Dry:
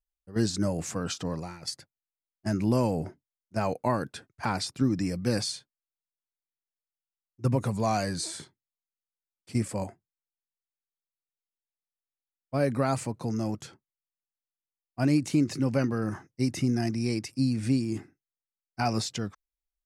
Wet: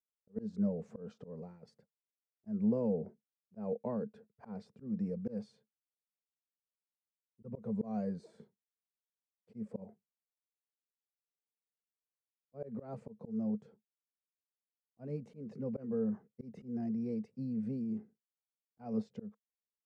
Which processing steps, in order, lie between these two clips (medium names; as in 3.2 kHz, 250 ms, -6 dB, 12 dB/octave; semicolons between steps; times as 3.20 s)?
two resonant band-passes 310 Hz, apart 1.1 oct; slow attack 166 ms; trim +1 dB